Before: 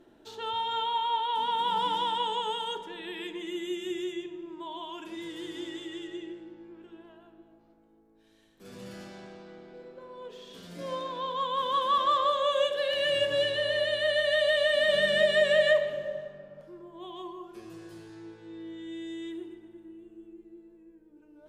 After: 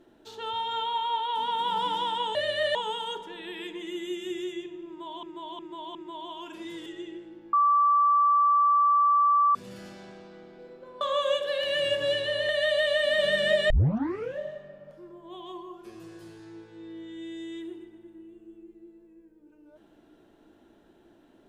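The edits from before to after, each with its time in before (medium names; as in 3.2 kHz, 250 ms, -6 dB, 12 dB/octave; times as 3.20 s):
4.47–4.83 s: loop, 4 plays
5.38–6.01 s: delete
6.68–8.70 s: bleep 1.16 kHz -18 dBFS
10.16–12.31 s: delete
13.79–14.19 s: move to 2.35 s
15.40 s: tape start 0.69 s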